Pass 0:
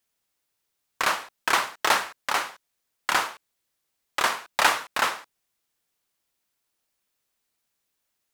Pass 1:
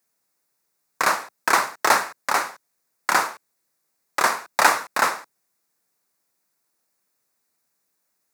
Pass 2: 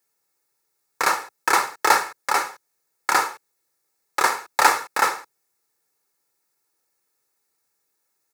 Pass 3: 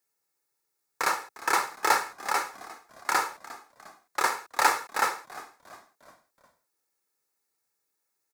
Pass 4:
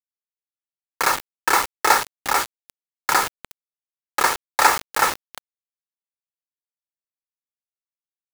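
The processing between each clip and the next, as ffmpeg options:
ffmpeg -i in.wav -af "highpass=frequency=120:width=0.5412,highpass=frequency=120:width=1.3066,equalizer=frequency=3100:width_type=o:width=0.5:gain=-14,volume=5dB" out.wav
ffmpeg -i in.wav -af "aecho=1:1:2.3:0.55,volume=-1dB" out.wav
ffmpeg -i in.wav -filter_complex "[0:a]asplit=5[link_01][link_02][link_03][link_04][link_05];[link_02]adelay=354,afreqshift=-72,volume=-18dB[link_06];[link_03]adelay=708,afreqshift=-144,volume=-24.4dB[link_07];[link_04]adelay=1062,afreqshift=-216,volume=-30.8dB[link_08];[link_05]adelay=1416,afreqshift=-288,volume=-37.1dB[link_09];[link_01][link_06][link_07][link_08][link_09]amix=inputs=5:normalize=0,volume=-6dB" out.wav
ffmpeg -i in.wav -af "acrusher=bits=4:mix=0:aa=0.000001,volume=6.5dB" out.wav

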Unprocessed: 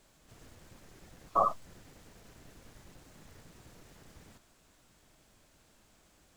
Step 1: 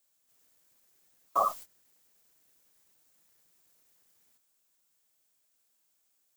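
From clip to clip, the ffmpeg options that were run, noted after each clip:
ffmpeg -i in.wav -af "aemphasis=mode=production:type=riaa,agate=range=-20dB:threshold=-42dB:ratio=16:detection=peak" out.wav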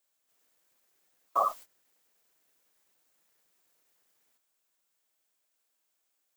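ffmpeg -i in.wav -af "bass=frequency=250:gain=-9,treble=frequency=4000:gain=-5" out.wav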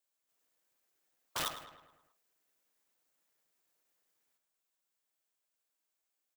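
ffmpeg -i in.wav -filter_complex "[0:a]aeval=exprs='(mod(13.3*val(0)+1,2)-1)/13.3':channel_layout=same,asplit=2[link_01][link_02];[link_02]adelay=106,lowpass=frequency=3300:poles=1,volume=-9dB,asplit=2[link_03][link_04];[link_04]adelay=106,lowpass=frequency=3300:poles=1,volume=0.54,asplit=2[link_05][link_06];[link_06]adelay=106,lowpass=frequency=3300:poles=1,volume=0.54,asplit=2[link_07][link_08];[link_08]adelay=106,lowpass=frequency=3300:poles=1,volume=0.54,asplit=2[link_09][link_10];[link_10]adelay=106,lowpass=frequency=3300:poles=1,volume=0.54,asplit=2[link_11][link_12];[link_12]adelay=106,lowpass=frequency=3300:poles=1,volume=0.54[link_13];[link_03][link_05][link_07][link_09][link_11][link_13]amix=inputs=6:normalize=0[link_14];[link_01][link_14]amix=inputs=2:normalize=0,volume=-7.5dB" out.wav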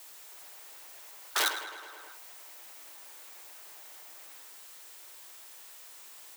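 ffmpeg -i in.wav -af "aeval=exprs='val(0)+0.5*0.00266*sgn(val(0))':channel_layout=same,afreqshift=290,volume=8dB" out.wav

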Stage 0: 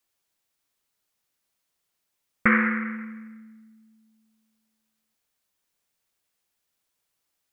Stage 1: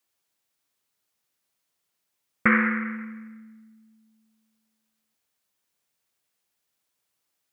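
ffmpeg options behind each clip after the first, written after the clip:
ffmpeg -i in.wav -af "highpass=70" out.wav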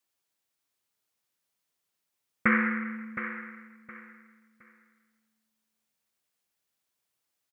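ffmpeg -i in.wav -af "aecho=1:1:716|1432|2148:0.299|0.0746|0.0187,volume=-4dB" out.wav

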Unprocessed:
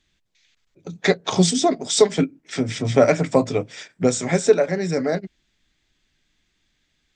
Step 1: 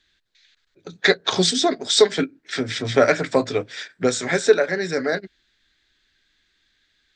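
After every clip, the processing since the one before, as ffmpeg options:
ffmpeg -i in.wav -af "equalizer=frequency=160:width_type=o:width=0.67:gain=-5,equalizer=frequency=400:width_type=o:width=0.67:gain=4,equalizer=frequency=1600:width_type=o:width=0.67:gain=12,equalizer=frequency=4000:width_type=o:width=0.67:gain=11,volume=-3.5dB" out.wav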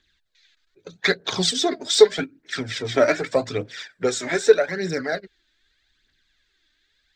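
ffmpeg -i in.wav -af "aphaser=in_gain=1:out_gain=1:delay=3.4:decay=0.54:speed=0.82:type=triangular,volume=-3.5dB" out.wav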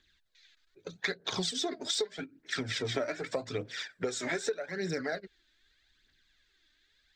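ffmpeg -i in.wav -af "acompressor=threshold=-27dB:ratio=12,volume=-2.5dB" out.wav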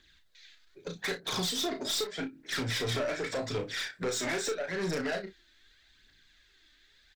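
ffmpeg -i in.wav -af "aeval=exprs='(tanh(56.2*val(0)+0.1)-tanh(0.1))/56.2':channel_layout=same,aecho=1:1:34|60:0.473|0.133,volume=6dB" out.wav

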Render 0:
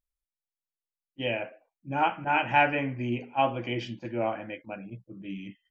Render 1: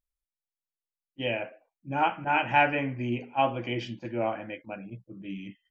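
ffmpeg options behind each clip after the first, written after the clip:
ffmpeg -i in.wav -af anull out.wav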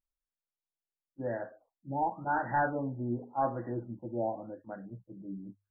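ffmpeg -i in.wav -af "bandreject=frequency=50:width_type=h:width=6,bandreject=frequency=100:width_type=h:width=6,asoftclip=type=hard:threshold=-19dB,afftfilt=real='re*lt(b*sr/1024,900*pow(2000/900,0.5+0.5*sin(2*PI*0.9*pts/sr)))':imag='im*lt(b*sr/1024,900*pow(2000/900,0.5+0.5*sin(2*PI*0.9*pts/sr)))':win_size=1024:overlap=0.75,volume=-3.5dB" out.wav

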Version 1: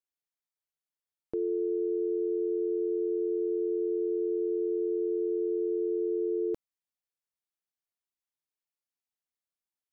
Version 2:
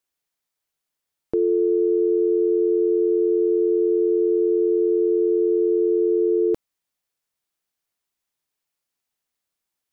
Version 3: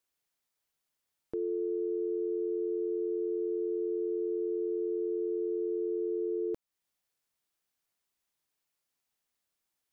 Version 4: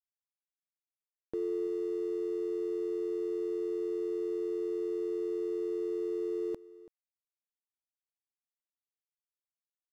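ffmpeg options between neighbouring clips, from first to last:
ffmpeg -i in.wav -af "acontrast=65,volume=4dB" out.wav
ffmpeg -i in.wav -af "alimiter=level_in=1dB:limit=-24dB:level=0:latency=1:release=335,volume=-1dB,volume=-1.5dB" out.wav
ffmpeg -i in.wav -af "aeval=exprs='sgn(val(0))*max(abs(val(0))-0.00188,0)':channel_layout=same,aecho=1:1:333:0.106" out.wav

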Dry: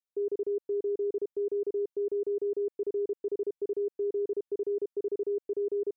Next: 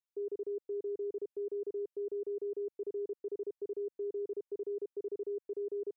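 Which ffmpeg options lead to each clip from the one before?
ffmpeg -i in.wav -af "equalizer=frequency=160:width_type=o:width=0.91:gain=-10,volume=-6dB" out.wav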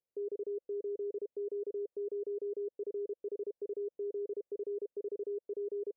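ffmpeg -i in.wav -af "lowpass=frequency=520:width_type=q:width=3.4,alimiter=level_in=11.5dB:limit=-24dB:level=0:latency=1:release=26,volume=-11.5dB,volume=2dB" out.wav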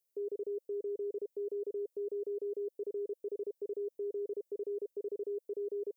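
ffmpeg -i in.wav -af "crystalizer=i=3:c=0" out.wav

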